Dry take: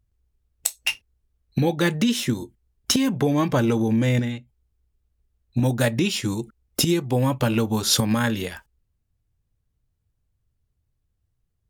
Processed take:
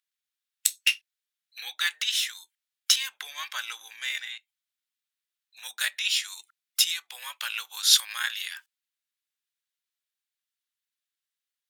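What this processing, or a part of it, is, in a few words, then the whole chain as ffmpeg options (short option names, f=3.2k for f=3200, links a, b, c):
headphones lying on a table: -af "highpass=f=1.5k:w=0.5412,highpass=f=1.5k:w=1.3066,equalizer=f=3.6k:t=o:w=0.49:g=5"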